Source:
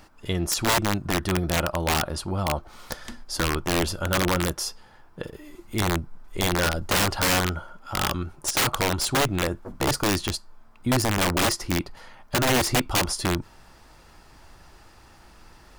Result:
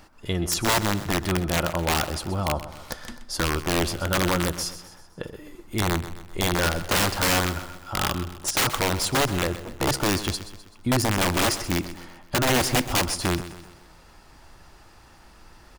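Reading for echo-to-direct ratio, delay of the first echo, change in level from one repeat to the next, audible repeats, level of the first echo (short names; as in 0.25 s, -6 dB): -12.5 dB, 0.128 s, -6.5 dB, 4, -13.5 dB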